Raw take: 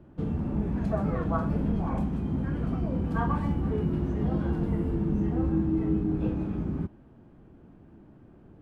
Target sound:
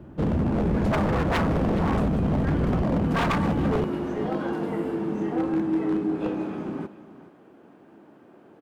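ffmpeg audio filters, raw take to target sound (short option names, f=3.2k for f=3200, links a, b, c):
-af "asetnsamples=n=441:p=0,asendcmd='2.82 highpass f 110;3.84 highpass f 380',highpass=43,aeval=exprs='0.0473*(abs(mod(val(0)/0.0473+3,4)-2)-1)':c=same,aecho=1:1:422:0.168,volume=8.5dB"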